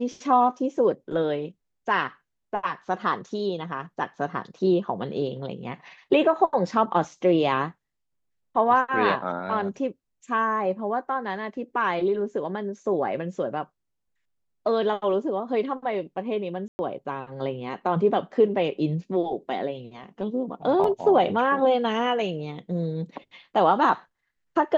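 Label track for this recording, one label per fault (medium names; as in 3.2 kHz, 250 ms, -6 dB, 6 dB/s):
16.680000	16.790000	dropout 110 ms
20.840000	20.840000	dropout 3 ms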